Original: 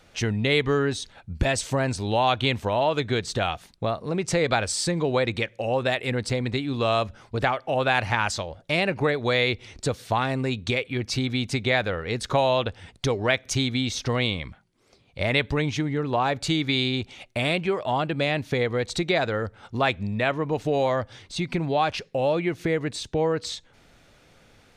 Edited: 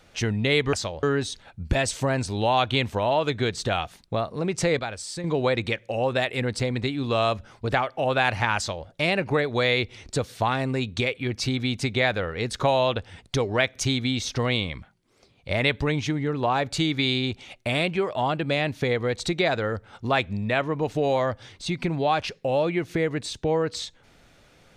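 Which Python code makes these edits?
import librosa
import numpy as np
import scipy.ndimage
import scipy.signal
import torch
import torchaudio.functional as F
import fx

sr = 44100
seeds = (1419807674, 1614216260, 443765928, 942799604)

y = fx.edit(x, sr, fx.clip_gain(start_s=4.49, length_s=0.45, db=-8.5),
    fx.duplicate(start_s=8.27, length_s=0.3, to_s=0.73), tone=tone)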